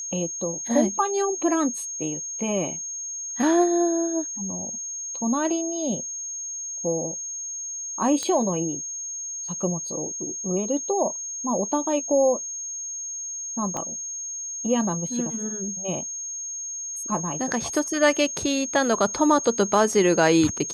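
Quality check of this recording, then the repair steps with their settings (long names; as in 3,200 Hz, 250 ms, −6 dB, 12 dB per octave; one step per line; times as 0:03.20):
whistle 6,500 Hz −30 dBFS
0:08.23: click −15 dBFS
0:13.77: click −17 dBFS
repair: click removal
notch filter 6,500 Hz, Q 30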